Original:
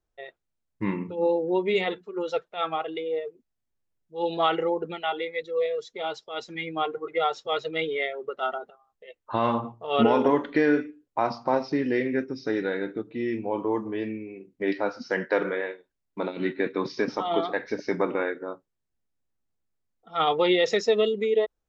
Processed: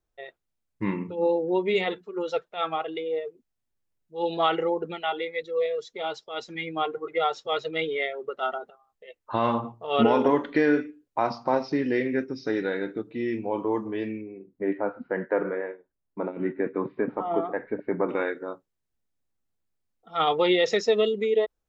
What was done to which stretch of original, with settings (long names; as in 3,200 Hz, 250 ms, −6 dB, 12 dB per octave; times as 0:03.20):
0:14.21–0:18.09: Gaussian smoothing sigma 4.7 samples